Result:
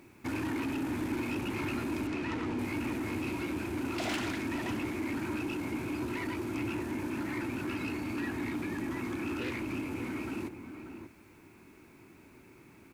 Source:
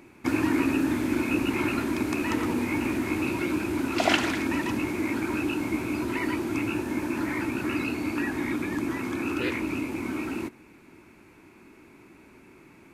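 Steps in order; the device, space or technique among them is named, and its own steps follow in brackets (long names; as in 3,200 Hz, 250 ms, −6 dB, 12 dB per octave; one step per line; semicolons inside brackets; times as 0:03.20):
open-reel tape (soft clipping −25.5 dBFS, distortion −11 dB; parametric band 100 Hz +5 dB 1.06 octaves; white noise bed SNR 36 dB)
0:02.07–0:02.59: low-pass filter 5,500 Hz 12 dB per octave
slap from a distant wall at 100 metres, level −8 dB
level −5 dB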